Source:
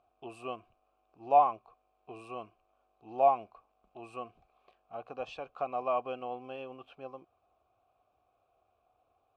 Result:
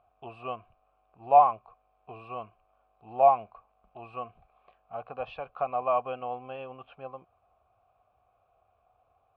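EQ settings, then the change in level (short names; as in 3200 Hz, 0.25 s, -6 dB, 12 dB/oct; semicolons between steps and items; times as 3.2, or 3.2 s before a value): air absorption 410 m; bell 320 Hz -12 dB 0.95 oct; +8.0 dB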